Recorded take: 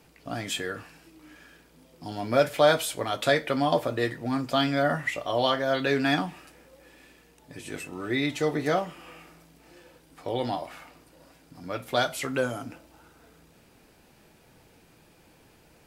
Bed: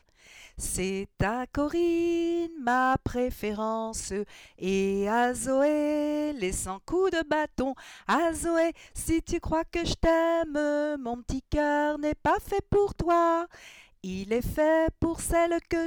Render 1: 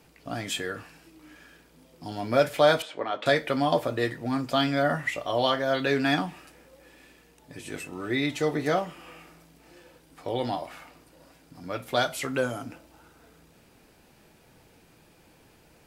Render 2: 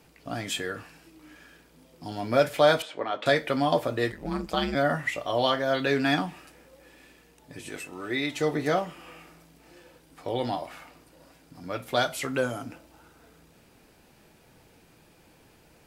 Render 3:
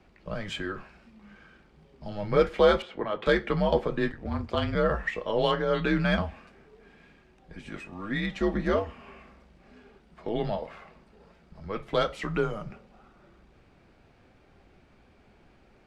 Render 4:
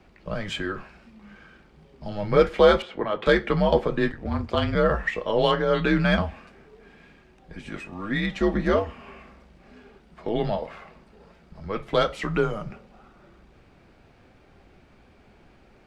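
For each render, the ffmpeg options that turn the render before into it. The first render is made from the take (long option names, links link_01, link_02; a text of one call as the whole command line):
ffmpeg -i in.wav -filter_complex "[0:a]asettb=1/sr,asplit=3[link_01][link_02][link_03];[link_01]atrim=end=2.824[link_04];[link_02]atrim=start=2.82:end=3.26,asetpts=PTS-STARTPTS,afade=type=in:duration=0.004:curve=qsin,afade=type=out:start_time=0.436:duration=0.004:curve=qsin,highpass=260,lowpass=2500[link_05];[link_03]atrim=start=3.256[link_06];[link_04][link_05]acrossfade=duration=0.004:curve1=hsin:curve2=qsin[link_07];[link_07][link_06]acrossfade=duration=0.004:curve1=qsin:curve2=hsin" out.wav
ffmpeg -i in.wav -filter_complex "[0:a]asplit=3[link_01][link_02][link_03];[link_01]afade=type=out:start_time=4.11:duration=0.02[link_04];[link_02]aeval=exprs='val(0)*sin(2*PI*79*n/s)':channel_layout=same,afade=type=in:start_time=4.11:duration=0.02,afade=type=out:start_time=4.74:duration=0.02[link_05];[link_03]afade=type=in:start_time=4.74:duration=0.02[link_06];[link_04][link_05][link_06]amix=inputs=3:normalize=0,asettb=1/sr,asplit=3[link_07][link_08][link_09];[link_07]atrim=end=7.694[link_10];[link_08]atrim=start=7.69:end=8.36,asetpts=PTS-STARTPTS,afade=type=in:duration=0.004:curve=qsin,afade=type=out:start_time=0.666:duration=0.004:curve=qsin,equalizer=frequency=110:width_type=o:width=2.7:gain=-7[link_11];[link_09]atrim=start=8.356[link_12];[link_10][link_11]acrossfade=duration=0.004:curve1=hsin:curve2=qsin[link_13];[link_13][link_12]acrossfade=duration=0.004:curve1=qsin:curve2=hsin" out.wav
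ffmpeg -i in.wav -af "afreqshift=-100,adynamicsmooth=sensitivity=0.5:basefreq=3400" out.wav
ffmpeg -i in.wav -af "volume=4dB" out.wav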